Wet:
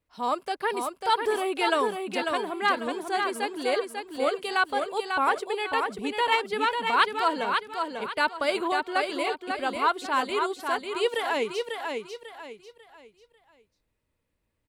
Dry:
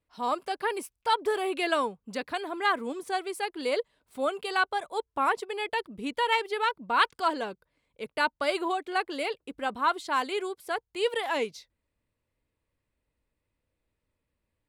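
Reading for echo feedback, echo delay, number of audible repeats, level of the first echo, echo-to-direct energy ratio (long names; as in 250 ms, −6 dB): 33%, 545 ms, 4, −5.0 dB, −4.5 dB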